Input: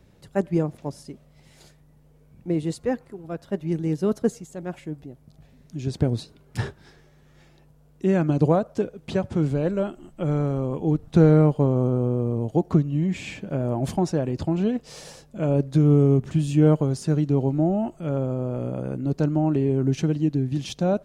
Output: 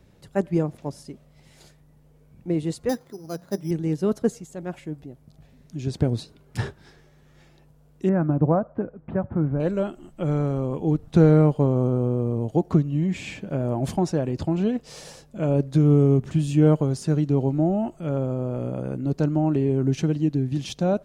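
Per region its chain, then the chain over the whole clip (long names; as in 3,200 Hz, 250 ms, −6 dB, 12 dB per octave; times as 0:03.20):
0:02.89–0:03.71: high-pass filter 98 Hz + mains-hum notches 60/120/180 Hz + bad sample-rate conversion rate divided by 8×, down filtered, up hold
0:08.09–0:09.60: low-pass filter 1,600 Hz 24 dB per octave + parametric band 420 Hz −6 dB 0.38 octaves
whole clip: no processing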